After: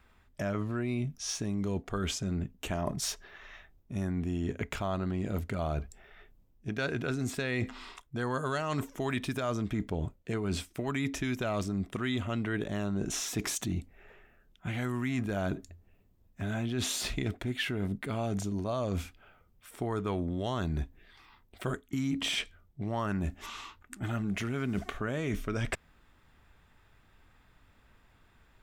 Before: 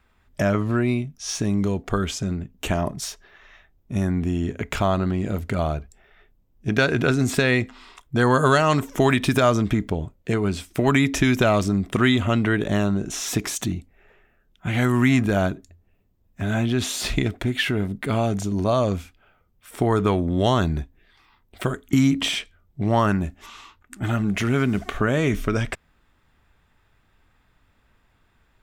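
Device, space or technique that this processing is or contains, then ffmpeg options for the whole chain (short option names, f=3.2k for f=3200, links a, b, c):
compression on the reversed sound: -af "areverse,acompressor=threshold=-30dB:ratio=6,areverse"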